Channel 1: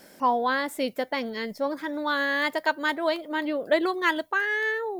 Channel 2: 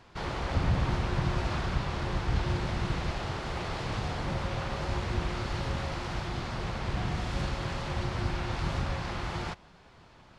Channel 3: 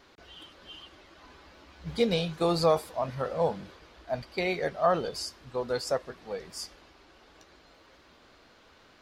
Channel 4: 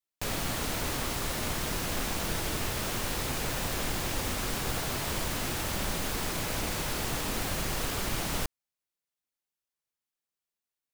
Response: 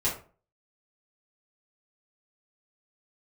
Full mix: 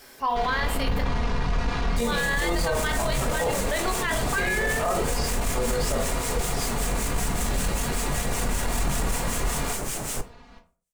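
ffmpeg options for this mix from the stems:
-filter_complex "[0:a]highpass=f=1.3k:p=1,volume=1.5dB,asplit=3[a][b][c];[a]atrim=end=1.01,asetpts=PTS-STARTPTS,afade=t=out:st=1.006:d=0.004:c=hsin[d];[b]atrim=start=1.01:end=2.02,asetpts=PTS-STARTPTS,volume=0[e];[c]atrim=start=2.02,asetpts=PTS-STARTPTS,afade=t=in:d=0.004:c=hsin[f];[d][e][f]concat=n=3:v=0:a=1,asplit=2[g][h];[h]volume=-9.5dB[i];[1:a]aecho=1:1:4.2:0.82,acontrast=87,aeval=exprs='(tanh(7.94*val(0)+0.5)-tanh(0.5))/7.94':c=same,adelay=200,volume=-9dB,asplit=2[j][k];[k]volume=-4dB[l];[2:a]volume=-4dB,asplit=2[m][n];[n]volume=-4dB[o];[3:a]equalizer=f=500:t=o:w=1:g=5,equalizer=f=4k:t=o:w=1:g=-5,equalizer=f=8k:t=o:w=1:g=11,acrossover=split=1500[p][q];[p]aeval=exprs='val(0)*(1-0.7/2+0.7/2*cos(2*PI*5.2*n/s))':c=same[r];[q]aeval=exprs='val(0)*(1-0.7/2-0.7/2*cos(2*PI*5.2*n/s))':c=same[s];[r][s]amix=inputs=2:normalize=0,adelay=1750,volume=0dB,asplit=2[t][u];[u]volume=-15.5dB[v];[4:a]atrim=start_sample=2205[w];[i][l][o][v]amix=inputs=4:normalize=0[x];[x][w]afir=irnorm=-1:irlink=0[y];[g][j][m][t][y]amix=inputs=5:normalize=0,alimiter=limit=-16.5dB:level=0:latency=1:release=10"

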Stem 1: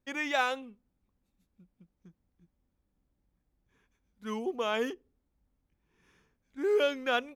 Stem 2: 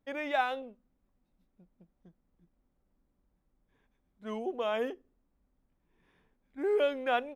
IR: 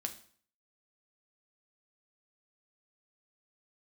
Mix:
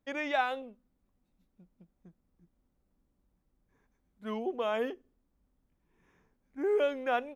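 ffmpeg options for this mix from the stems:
-filter_complex "[0:a]volume=-10dB,asplit=2[a][b];[b]volume=-17.5dB[c];[1:a]volume=-1.5dB,asplit=2[d][e];[e]apad=whole_len=324143[f];[a][f]sidechaincompress=threshold=-33dB:ratio=8:attack=16:release=1320[g];[2:a]atrim=start_sample=2205[h];[c][h]afir=irnorm=-1:irlink=0[i];[g][d][i]amix=inputs=3:normalize=0"

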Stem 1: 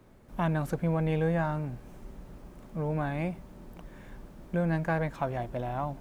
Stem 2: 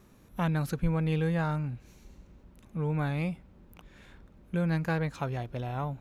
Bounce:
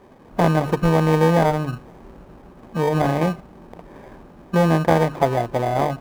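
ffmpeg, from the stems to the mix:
-filter_complex "[0:a]volume=-7.5dB[a];[1:a]bandreject=f=50:t=h:w=6,bandreject=f=100:t=h:w=6,bandreject=f=150:t=h:w=6,bandreject=f=200:t=h:w=6,bandreject=f=250:t=h:w=6,bandreject=f=300:t=h:w=6,bandreject=f=350:t=h:w=6,acrusher=samples=32:mix=1:aa=0.000001,volume=1dB[b];[a][b]amix=inputs=2:normalize=0,equalizer=f=650:w=0.33:g=14.5"

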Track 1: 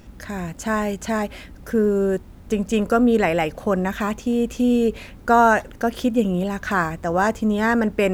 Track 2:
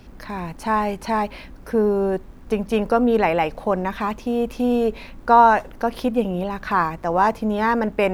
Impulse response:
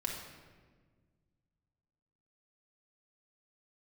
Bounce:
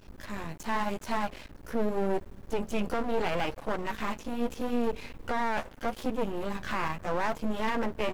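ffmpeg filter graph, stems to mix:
-filter_complex "[0:a]alimiter=limit=-16dB:level=0:latency=1,volume=-10dB,asplit=2[a][b];[b]volume=-15.5dB[c];[1:a]flanger=delay=6:depth=8.1:regen=34:speed=0.81:shape=triangular,adelay=14,volume=-0.5dB[d];[2:a]atrim=start_sample=2205[e];[c][e]afir=irnorm=-1:irlink=0[f];[a][d][f]amix=inputs=3:normalize=0,aeval=exprs='max(val(0),0)':c=same,alimiter=limit=-18dB:level=0:latency=1:release=12"

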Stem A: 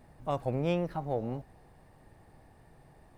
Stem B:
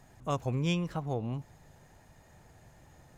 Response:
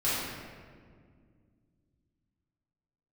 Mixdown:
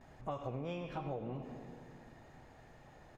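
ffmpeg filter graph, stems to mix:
-filter_complex "[0:a]lowpass=2.6k,volume=-3dB,asplit=2[a][b];[1:a]acrossover=split=250 4800:gain=0.141 1 0.224[c][d][e];[c][d][e]amix=inputs=3:normalize=0,volume=-1,adelay=10,volume=-1dB,asplit=2[f][g];[g]volume=-17dB[h];[b]apad=whole_len=140583[i];[f][i]sidechaincompress=threshold=-40dB:ratio=8:attack=16:release=200[j];[2:a]atrim=start_sample=2205[k];[h][k]afir=irnorm=-1:irlink=0[l];[a][j][l]amix=inputs=3:normalize=0,acompressor=threshold=-36dB:ratio=12"

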